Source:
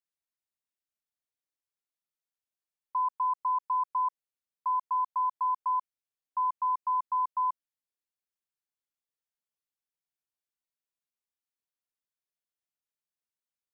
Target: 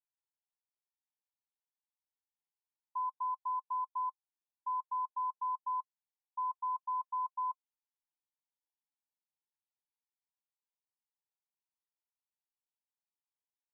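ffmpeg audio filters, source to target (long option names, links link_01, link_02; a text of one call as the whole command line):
ffmpeg -i in.wav -af "alimiter=level_in=7dB:limit=-24dB:level=0:latency=1,volume=-7dB,asuperpass=centerf=890:order=20:qfactor=3" out.wav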